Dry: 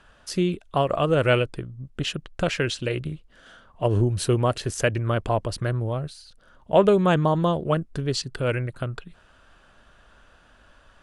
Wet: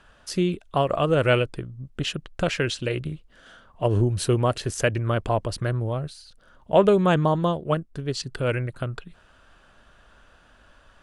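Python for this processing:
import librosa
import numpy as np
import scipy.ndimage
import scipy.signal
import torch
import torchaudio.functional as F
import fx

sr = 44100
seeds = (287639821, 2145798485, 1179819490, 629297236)

y = fx.upward_expand(x, sr, threshold_db=-31.0, expansion=1.5, at=(7.36, 8.2))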